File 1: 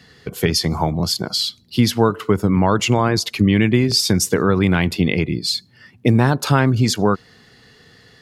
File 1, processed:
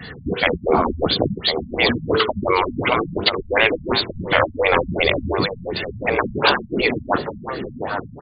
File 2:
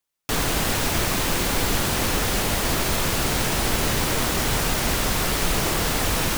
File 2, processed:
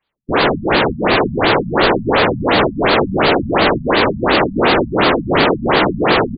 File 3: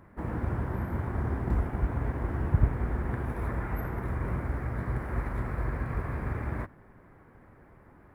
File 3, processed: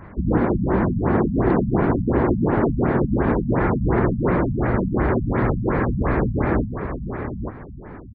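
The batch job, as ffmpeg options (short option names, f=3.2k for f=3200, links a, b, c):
-filter_complex "[0:a]afftfilt=real='re*lt(hypot(re,im),0.224)':imag='im*lt(hypot(re,im),0.224)':win_size=1024:overlap=0.75,adynamicequalizer=threshold=0.00708:dfrequency=390:dqfactor=0.9:tfrequency=390:tqfactor=0.9:attack=5:release=100:ratio=0.375:range=2.5:mode=boostabove:tftype=bell,asoftclip=type=tanh:threshold=-15dB,apsyclip=19.5dB,asplit=2[a][b];[b]adelay=840,lowpass=f=4.7k:p=1,volume=-7.5dB,asplit=2[c][d];[d]adelay=840,lowpass=f=4.7k:p=1,volume=0.23,asplit=2[e][f];[f]adelay=840,lowpass=f=4.7k:p=1,volume=0.23[g];[c][e][g]amix=inputs=3:normalize=0[h];[a][h]amix=inputs=2:normalize=0,afftfilt=real='re*lt(b*sr/1024,220*pow(4900/220,0.5+0.5*sin(2*PI*2.8*pts/sr)))':imag='im*lt(b*sr/1024,220*pow(4900/220,0.5+0.5*sin(2*PI*2.8*pts/sr)))':win_size=1024:overlap=0.75,volume=-5dB"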